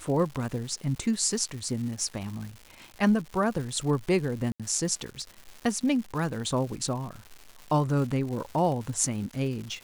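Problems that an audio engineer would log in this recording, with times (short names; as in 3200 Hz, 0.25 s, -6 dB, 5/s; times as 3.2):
crackle 280/s -36 dBFS
4.52–4.6 gap 76 ms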